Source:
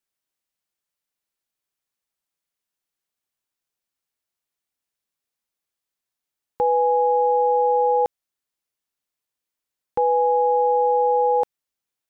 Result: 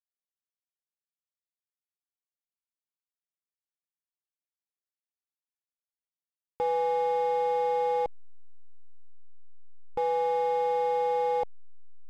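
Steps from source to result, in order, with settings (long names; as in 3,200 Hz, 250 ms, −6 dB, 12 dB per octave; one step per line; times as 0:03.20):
slack as between gear wheels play −24.5 dBFS
level −7.5 dB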